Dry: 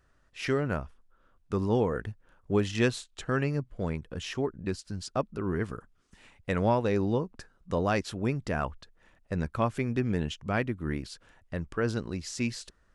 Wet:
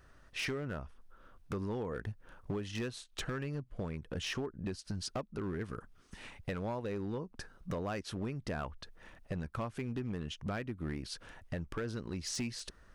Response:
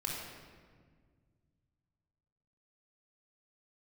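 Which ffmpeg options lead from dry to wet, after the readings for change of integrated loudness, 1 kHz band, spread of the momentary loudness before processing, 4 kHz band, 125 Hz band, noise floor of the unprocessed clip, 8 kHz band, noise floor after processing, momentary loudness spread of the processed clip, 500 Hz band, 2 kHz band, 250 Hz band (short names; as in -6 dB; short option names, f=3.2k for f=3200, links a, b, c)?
-9.0 dB, -10.5 dB, 11 LU, -2.5 dB, -8.0 dB, -67 dBFS, -2.0 dB, -63 dBFS, 9 LU, -10.0 dB, -8.0 dB, -8.5 dB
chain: -af "bandreject=f=7.3k:w=8.8,acompressor=threshold=-40dB:ratio=10,asoftclip=type=hard:threshold=-37.5dB,volume=6.5dB"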